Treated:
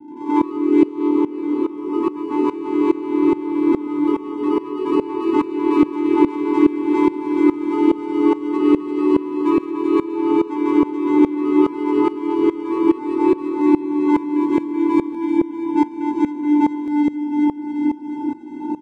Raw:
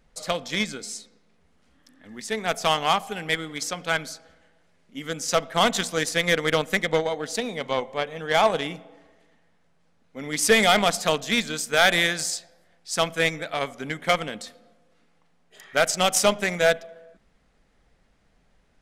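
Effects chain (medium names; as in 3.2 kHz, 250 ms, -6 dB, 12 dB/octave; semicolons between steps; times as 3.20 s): jump at every zero crossing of -23.5 dBFS; elliptic low-pass 580 Hz; waveshaping leveller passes 5; vocoder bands 4, square 295 Hz; doubling 16 ms -3 dB; on a send: shuffle delay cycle 711 ms, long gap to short 1.5:1, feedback 65%, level -4 dB; on the sum: ever faster or slower copies 99 ms, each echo +2 st, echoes 3; sawtooth tremolo in dB swelling 2.4 Hz, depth 18 dB; trim -2.5 dB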